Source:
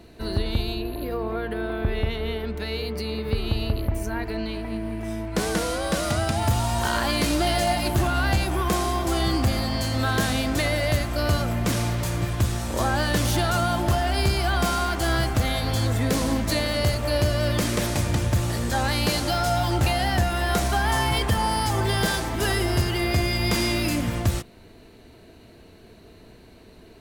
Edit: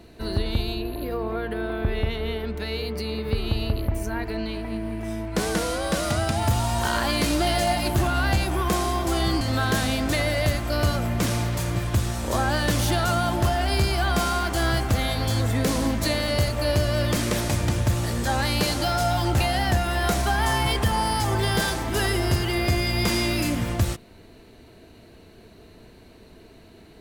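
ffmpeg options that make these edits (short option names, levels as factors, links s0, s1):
-filter_complex "[0:a]asplit=2[s0][s1];[s0]atrim=end=9.412[s2];[s1]atrim=start=9.868[s3];[s2][s3]acrossfade=d=0.004:c1=hsin:c2=hsin"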